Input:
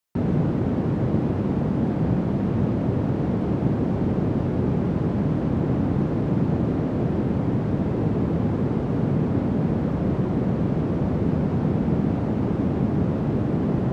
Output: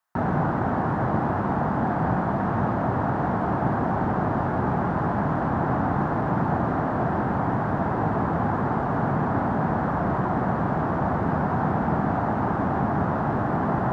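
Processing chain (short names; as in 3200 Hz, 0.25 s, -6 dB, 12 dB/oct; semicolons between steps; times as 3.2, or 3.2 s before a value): band shelf 1100 Hz +15.5 dB; gain -3.5 dB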